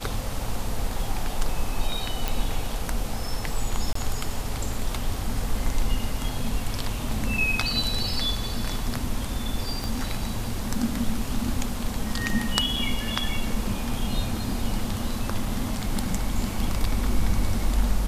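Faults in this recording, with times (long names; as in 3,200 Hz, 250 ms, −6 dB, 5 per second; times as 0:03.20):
0:02.28: click
0:03.93–0:03.95: drop-out 24 ms
0:09.84: click
0:12.76: drop-out 4.7 ms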